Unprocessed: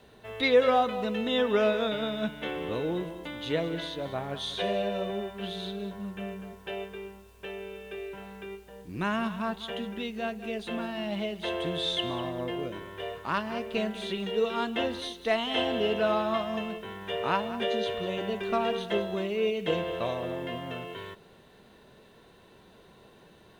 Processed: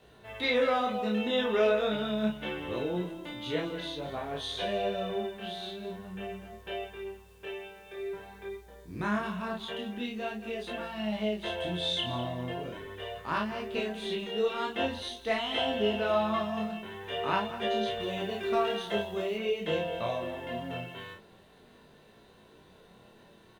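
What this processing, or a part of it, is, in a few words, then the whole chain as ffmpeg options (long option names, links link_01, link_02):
double-tracked vocal: -filter_complex "[0:a]asettb=1/sr,asplit=3[link_01][link_02][link_03];[link_01]atrim=end=7.814[link_04];[link_02]atrim=start=7.81:end=9.23,asetpts=PTS-STARTPTS,afade=type=in:duration=0.004:curve=qsin,afade=type=out:start_time=1.416:duration=0.004:curve=qsin,bandreject=frequency=2800:width=5.5[link_05];[link_03]atrim=start=9.226[link_06];[link_04][link_05]acrossfade=duration=0.004:curve1=hsin:curve2=qsin[link_07];[link_07][link_06]acrossfade=duration=0.004:curve1=qsin:curve2=hsin,asplit=2[link_08][link_09];[link_09]adelay=33,volume=-3.5dB[link_10];[link_08][link_10]amix=inputs=2:normalize=0,flanger=delay=18.5:depth=5.7:speed=0.45,asettb=1/sr,asplit=3[link_11][link_12][link_13];[link_11]atrim=end=18.004[link_14];[link_12]atrim=start=18:end=19.38,asetpts=PTS-STARTPTS,afade=type=in:duration=0.004:curve=qsin,afade=type=out:start_time=1.376:duration=0.004:curve=qsin,highshelf=frequency=5000:gain=4.5[link_15];[link_13]atrim=start=19.376[link_16];[link_14][link_15]acrossfade=duration=0.004:curve1=hsin:curve2=qsin[link_17];[link_17][link_16]acrossfade=duration=0.004:curve1=qsin:curve2=hsin"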